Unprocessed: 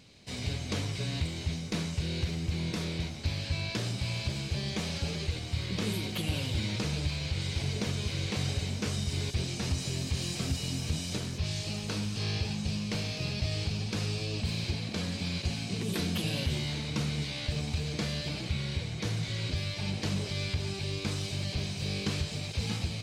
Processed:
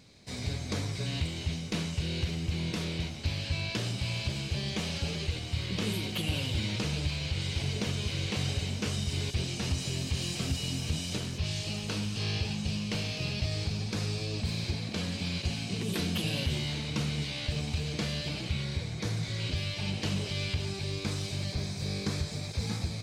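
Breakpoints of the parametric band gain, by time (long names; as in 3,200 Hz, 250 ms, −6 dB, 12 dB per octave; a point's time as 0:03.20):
parametric band 2,900 Hz 0.3 octaves
−7 dB
from 0:01.06 +4.5 dB
from 0:13.45 −3.5 dB
from 0:14.92 +3 dB
from 0:18.64 −6 dB
from 0:19.40 +5 dB
from 0:20.65 −3.5 dB
from 0:21.51 −13 dB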